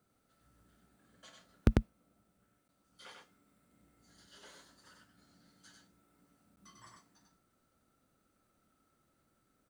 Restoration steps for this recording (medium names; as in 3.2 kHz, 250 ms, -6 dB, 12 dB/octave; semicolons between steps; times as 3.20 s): clip repair -13.5 dBFS; interpolate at 2.68/6.56 s, 10 ms; inverse comb 97 ms -3.5 dB